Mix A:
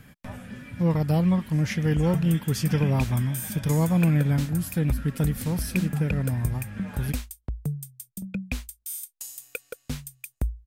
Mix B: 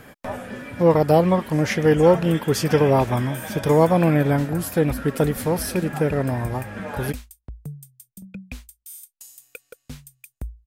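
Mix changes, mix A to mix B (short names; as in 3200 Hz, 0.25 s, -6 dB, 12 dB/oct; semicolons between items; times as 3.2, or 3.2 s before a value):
speech: add EQ curve 180 Hz 0 dB, 390 Hz +14 dB, 650 Hz +15 dB, 2500 Hz +6 dB; background -5.5 dB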